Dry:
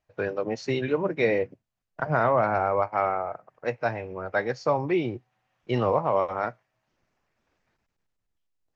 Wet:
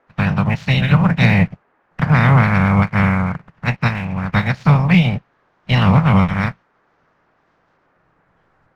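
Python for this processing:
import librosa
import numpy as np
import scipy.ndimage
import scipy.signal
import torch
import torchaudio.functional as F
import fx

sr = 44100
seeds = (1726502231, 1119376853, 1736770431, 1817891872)

y = fx.spec_clip(x, sr, under_db=27)
y = scipy.signal.sosfilt(scipy.signal.butter(2, 3900.0, 'lowpass', fs=sr, output='sos'), y)
y = fx.low_shelf_res(y, sr, hz=240.0, db=12.0, q=3.0)
y = fx.leveller(y, sr, passes=1)
y = fx.dmg_noise_band(y, sr, seeds[0], low_hz=220.0, high_hz=1700.0, level_db=-65.0)
y = F.gain(torch.from_numpy(y), 3.0).numpy()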